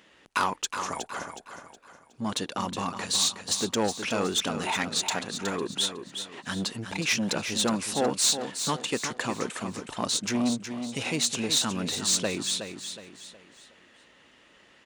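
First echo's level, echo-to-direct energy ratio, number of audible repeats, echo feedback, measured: -8.5 dB, -8.0 dB, 4, 38%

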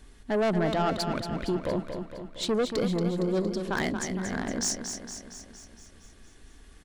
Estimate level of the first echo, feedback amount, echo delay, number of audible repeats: -7.5 dB, 59%, 231 ms, 7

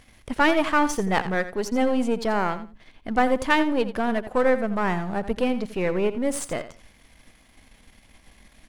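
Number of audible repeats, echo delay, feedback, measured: 2, 85 ms, 19%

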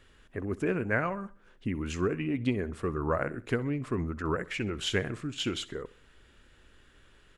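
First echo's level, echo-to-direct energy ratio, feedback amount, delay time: -19.5 dB, -18.5 dB, 43%, 64 ms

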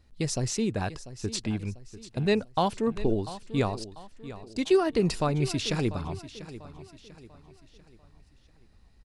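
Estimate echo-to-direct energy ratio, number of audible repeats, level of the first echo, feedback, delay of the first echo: -14.0 dB, 3, -15.0 dB, 41%, 693 ms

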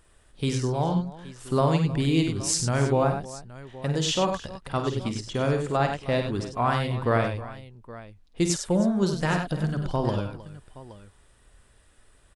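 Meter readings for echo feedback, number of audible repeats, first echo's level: no regular repeats, 4, -8.5 dB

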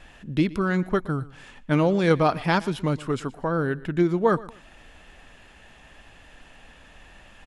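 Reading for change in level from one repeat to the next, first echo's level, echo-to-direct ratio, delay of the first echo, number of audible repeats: -11.0 dB, -20.0 dB, -19.5 dB, 120 ms, 2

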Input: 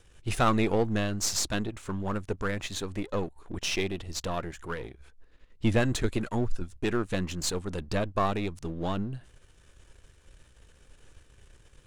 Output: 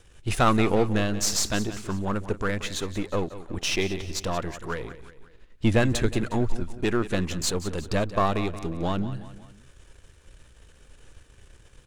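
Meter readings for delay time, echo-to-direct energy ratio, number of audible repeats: 180 ms, -13.0 dB, 3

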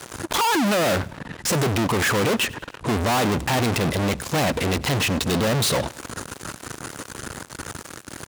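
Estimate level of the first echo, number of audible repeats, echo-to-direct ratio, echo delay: -22.0 dB, 2, -21.0 dB, 98 ms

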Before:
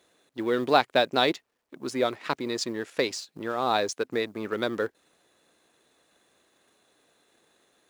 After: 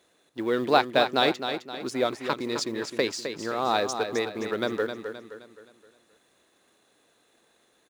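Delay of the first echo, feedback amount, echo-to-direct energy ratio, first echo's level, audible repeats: 261 ms, 43%, -7.0 dB, -8.0 dB, 4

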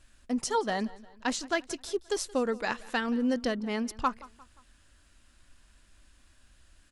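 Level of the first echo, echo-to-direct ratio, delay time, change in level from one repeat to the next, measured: -21.0 dB, -20.0 dB, 176 ms, -6.5 dB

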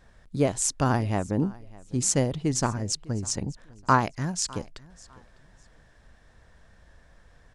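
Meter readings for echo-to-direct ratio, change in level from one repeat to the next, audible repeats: -22.5 dB, -12.5 dB, 2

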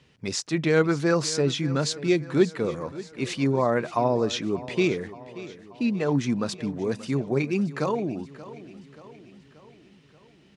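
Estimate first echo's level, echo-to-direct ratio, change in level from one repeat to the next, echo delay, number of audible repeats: -16.5 dB, -15.0 dB, -5.5 dB, 581 ms, 4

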